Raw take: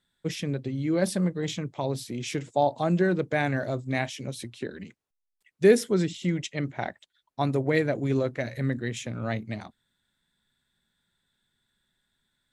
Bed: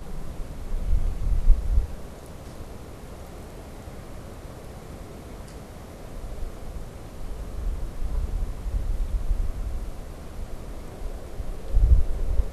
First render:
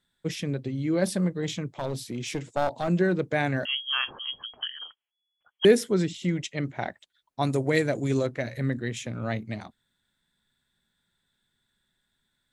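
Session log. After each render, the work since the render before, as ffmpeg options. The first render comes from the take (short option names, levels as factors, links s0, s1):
-filter_complex "[0:a]asettb=1/sr,asplit=3[s0][s1][s2];[s0]atrim=end=1.784[s3];[s1]atrim=start=1.78:end=2.88,asetpts=PTS-STARTPTS,afade=t=in:d=0.004:c=qsin,afade=t=out:st=1.096:d=0.004:c=qsin,aeval=exprs='clip(val(0),-1,0.0422)':c=same[s4];[s2]atrim=start=2.876[s5];[s3][s4]acrossfade=d=0.004:c1=hsin:c2=qsin[s6];[s6][s5]acrossfade=d=0.004:c1=qsin:c2=hsin,asettb=1/sr,asplit=3[s7][s8][s9];[s7]atrim=end=3.654[s10];[s8]atrim=start=3.65:end=5.65,asetpts=PTS-STARTPTS,afade=t=in:d=0.004:c=qsin,afade=t=out:st=1.996:d=0.004:c=qsin,lowpass=f=2900:t=q:w=0.5098,lowpass=f=2900:t=q:w=0.6013,lowpass=f=2900:t=q:w=0.9,lowpass=f=2900:t=q:w=2.563,afreqshift=-3400[s11];[s9]atrim=start=5.646[s12];[s10][s11]acrossfade=d=0.004:c1=hsin:c2=qsin[s13];[s13][s12]acrossfade=d=0.004:c1=qsin:c2=hsin,asettb=1/sr,asplit=3[s14][s15][s16];[s14]atrim=end=7.424[s17];[s15]atrim=start=7.42:end=8.27,asetpts=PTS-STARTPTS,afade=t=in:d=0.004:c=qsin,afade=t=out:st=0.846:d=0.004:c=qsin,equalizer=f=8100:t=o:w=1.3:g=13[s18];[s16]atrim=start=8.266[s19];[s17][s18]acrossfade=d=0.004:c1=hsin:c2=qsin[s20];[s20][s19]acrossfade=d=0.004:c1=qsin:c2=hsin"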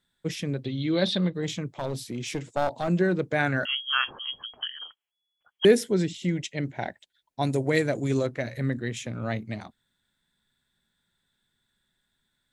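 -filter_complex "[0:a]asettb=1/sr,asplit=3[s0][s1][s2];[s0]atrim=end=0.654[s3];[s1]atrim=start=0.65:end=1.34,asetpts=PTS-STARTPTS,afade=t=in:d=0.004:c=qsin,afade=t=out:st=0.686:d=0.004:c=qsin,lowpass=f=3700:t=q:w=11[s4];[s2]atrim=start=1.336[s5];[s3][s4]acrossfade=d=0.004:c1=hsin:c2=qsin[s6];[s6][s5]acrossfade=d=0.004:c1=qsin:c2=hsin,asettb=1/sr,asplit=3[s7][s8][s9];[s7]atrim=end=3.394[s10];[s8]atrim=start=3.39:end=4.04,asetpts=PTS-STARTPTS,afade=t=in:d=0.004:c=qsin,afade=t=out:st=0.646:d=0.004:c=qsin,equalizer=f=1400:t=o:w=0.3:g=12[s11];[s9]atrim=start=4.036[s12];[s10][s11]acrossfade=d=0.004:c1=hsin:c2=qsin[s13];[s13][s12]acrossfade=d=0.004:c1=qsin:c2=hsin,asettb=1/sr,asplit=3[s14][s15][s16];[s14]atrim=end=5.744[s17];[s15]atrim=start=5.74:end=7.63,asetpts=PTS-STARTPTS,afade=t=in:d=0.004:c=qsin,afade=t=out:st=1.886:d=0.004:c=qsin,equalizer=f=1200:t=o:w=0.22:g=-13[s18];[s16]atrim=start=7.626[s19];[s17][s18]acrossfade=d=0.004:c1=hsin:c2=qsin[s20];[s20][s19]acrossfade=d=0.004:c1=qsin:c2=hsin"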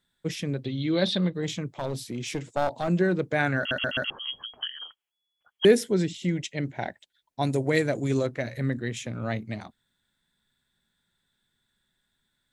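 -filter_complex "[0:a]asplit=5[s0][s1][s2][s3][s4];[s0]atrim=end=3.712[s5];[s1]atrim=start=3.578:end=3.712[s6];[s2]atrim=start=3.578:end=3.712[s7];[s3]atrim=start=3.578:end=3.712[s8];[s4]atrim=start=4.098[s9];[s5][s6]acrossfade=d=0.004:c1=hsin:c2=hsin[s10];[s10][s7]acrossfade=d=0.004:c1=hsin:c2=hsin[s11];[s11][s8]acrossfade=d=0.004:c1=hsin:c2=hsin[s12];[s12][s9]acrossfade=d=0.004:c1=hsin:c2=hsin"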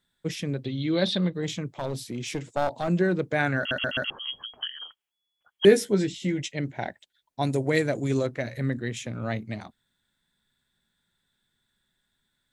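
-filter_complex "[0:a]asettb=1/sr,asplit=3[s0][s1][s2];[s0]atrim=end=5.654[s3];[s1]atrim=start=5.65:end=6.52,asetpts=PTS-STARTPTS,afade=t=in:d=0.004:c=qsin,afade=t=out:st=0.866:d=0.004:c=qsin,asplit=2[s4][s5];[s5]adelay=15,volume=0.562[s6];[s4][s6]amix=inputs=2:normalize=0,atrim=end_sample=38367[s7];[s2]atrim=start=6.516[s8];[s3][s7]acrossfade=d=0.004:c1=hsin:c2=qsin[s9];[s9][s8]acrossfade=d=0.004:c1=qsin:c2=hsin"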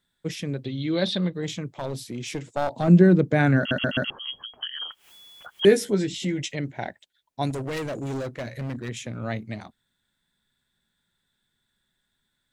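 -filter_complex "[0:a]asettb=1/sr,asplit=3[s0][s1][s2];[s0]atrim=end=2.764[s3];[s1]atrim=start=2.76:end=4.11,asetpts=PTS-STARTPTS,afade=t=in:d=0.004:c=qsin,afade=t=out:st=1.346:d=0.004:c=qsin,equalizer=f=190:w=0.58:g=11[s4];[s2]atrim=start=4.106[s5];[s3][s4]acrossfade=d=0.004:c1=hsin:c2=qsin[s6];[s6][s5]acrossfade=d=0.004:c1=qsin:c2=hsin,asplit=3[s7][s8][s9];[s7]afade=t=out:st=4.71:d=0.02[s10];[s8]acompressor=mode=upward:threshold=0.0631:ratio=2.5:attack=3.2:release=140:knee=2.83:detection=peak,afade=t=in:st=4.71:d=0.02,afade=t=out:st=6.57:d=0.02[s11];[s9]afade=t=in:st=6.57:d=0.02[s12];[s10][s11][s12]amix=inputs=3:normalize=0,asettb=1/sr,asplit=3[s13][s14][s15];[s13]atrim=end=7.504[s16];[s14]atrim=start=7.5:end=8.89,asetpts=PTS-STARTPTS,afade=t=in:d=0.004:c=qsin,afade=t=out:st=1.386:d=0.004:c=qsin,asoftclip=type=hard:threshold=0.0422[s17];[s15]atrim=start=8.886[s18];[s16][s17]acrossfade=d=0.004:c1=hsin:c2=qsin[s19];[s19][s18]acrossfade=d=0.004:c1=qsin:c2=hsin"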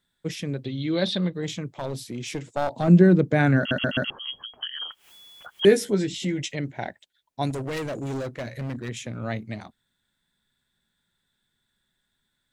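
-af anull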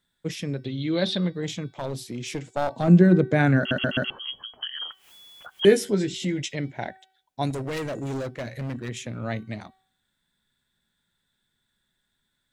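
-af "bandreject=f=379.7:t=h:w=4,bandreject=f=759.4:t=h:w=4,bandreject=f=1139.1:t=h:w=4,bandreject=f=1518.8:t=h:w=4,bandreject=f=1898.5:t=h:w=4,bandreject=f=2278.2:t=h:w=4,bandreject=f=2657.9:t=h:w=4,bandreject=f=3037.6:t=h:w=4,bandreject=f=3417.3:t=h:w=4,bandreject=f=3797:t=h:w=4,bandreject=f=4176.7:t=h:w=4,bandreject=f=4556.4:t=h:w=4,bandreject=f=4936.1:t=h:w=4,bandreject=f=5315.8:t=h:w=4"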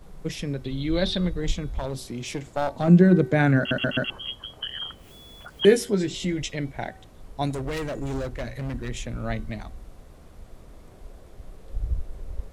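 -filter_complex "[1:a]volume=0.316[s0];[0:a][s0]amix=inputs=2:normalize=0"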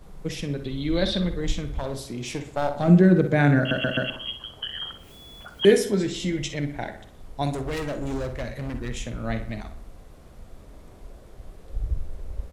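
-filter_complex "[0:a]asplit=2[s0][s1];[s1]adelay=48,volume=0.224[s2];[s0][s2]amix=inputs=2:normalize=0,asplit=2[s3][s4];[s4]adelay=62,lowpass=f=4000:p=1,volume=0.299,asplit=2[s5][s6];[s6]adelay=62,lowpass=f=4000:p=1,volume=0.52,asplit=2[s7][s8];[s8]adelay=62,lowpass=f=4000:p=1,volume=0.52,asplit=2[s9][s10];[s10]adelay=62,lowpass=f=4000:p=1,volume=0.52,asplit=2[s11][s12];[s12]adelay=62,lowpass=f=4000:p=1,volume=0.52,asplit=2[s13][s14];[s14]adelay=62,lowpass=f=4000:p=1,volume=0.52[s15];[s5][s7][s9][s11][s13][s15]amix=inputs=6:normalize=0[s16];[s3][s16]amix=inputs=2:normalize=0"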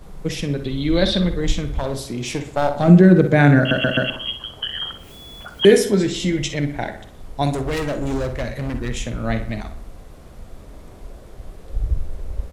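-af "volume=2,alimiter=limit=0.891:level=0:latency=1"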